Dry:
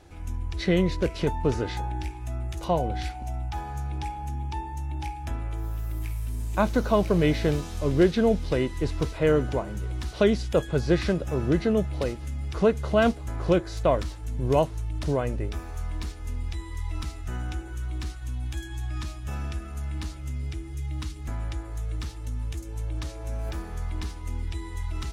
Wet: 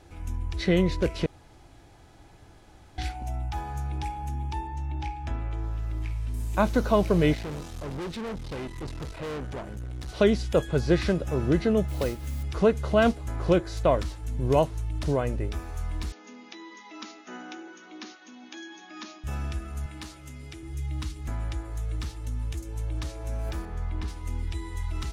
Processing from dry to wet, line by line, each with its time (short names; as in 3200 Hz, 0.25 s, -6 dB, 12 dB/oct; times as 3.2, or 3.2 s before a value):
1.26–2.98 room tone
4.67–6.34 LPF 5200 Hz
7.34–10.09 tube stage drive 32 dB, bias 0.7
11.88–12.43 modulation noise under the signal 20 dB
16.12–19.24 brick-wall FIR band-pass 190–6900 Hz
19.86–20.63 HPF 290 Hz 6 dB/oct
23.65–24.08 LPF 2500 Hz 6 dB/oct